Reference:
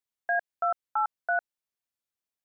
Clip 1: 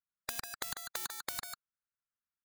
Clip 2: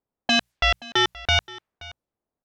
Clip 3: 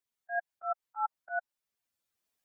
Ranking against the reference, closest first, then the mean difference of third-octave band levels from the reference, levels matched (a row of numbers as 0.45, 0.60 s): 3, 2, 1; 3.0, 15.5, 27.0 dB